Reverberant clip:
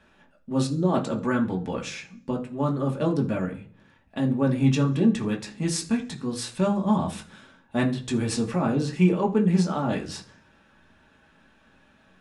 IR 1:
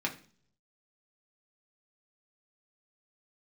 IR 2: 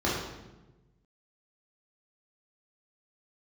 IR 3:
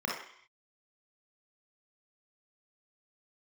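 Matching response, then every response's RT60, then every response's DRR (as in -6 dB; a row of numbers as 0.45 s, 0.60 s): 1; 0.45 s, 1.1 s, 0.60 s; -0.5 dB, -7.0 dB, -3.0 dB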